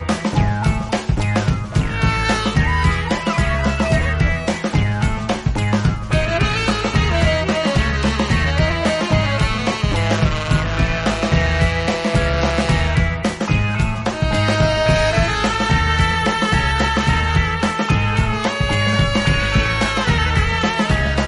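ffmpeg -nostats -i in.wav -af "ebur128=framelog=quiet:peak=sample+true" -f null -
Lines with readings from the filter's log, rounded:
Integrated loudness:
  I:         -17.7 LUFS
  Threshold: -27.7 LUFS
Loudness range:
  LRA:         1.7 LU
  Threshold: -37.6 LUFS
  LRA low:   -18.4 LUFS
  LRA high:  -16.7 LUFS
Sample peak:
  Peak:       -5.0 dBFS
True peak:
  Peak:       -5.0 dBFS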